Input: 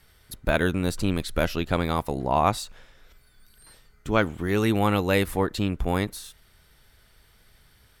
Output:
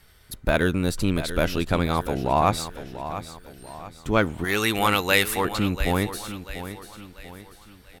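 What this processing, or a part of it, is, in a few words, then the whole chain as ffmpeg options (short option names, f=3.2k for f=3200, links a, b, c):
parallel distortion: -filter_complex "[0:a]asplit=2[a][b];[b]asoftclip=type=hard:threshold=-22.5dB,volume=-9.5dB[c];[a][c]amix=inputs=2:normalize=0,asettb=1/sr,asplit=3[d][e][f];[d]atrim=end=4.444[g];[e]atrim=start=4.44:end=5.45,asetpts=PTS-STARTPTS,afade=t=in:d=0.004:c=qsin,afade=t=out:st=1.006:d=0.004:c=qsin,tiltshelf=f=750:g=-8.5[h];[f]atrim=start=5.446[i];[g][h]acrossfade=d=0.004:c1=hsin:c2=qsin[j];[j][i]acrossfade=d=0.004:c1=qsin:c2=hsin,aecho=1:1:690|1380|2070|2760:0.251|0.105|0.0443|0.0186"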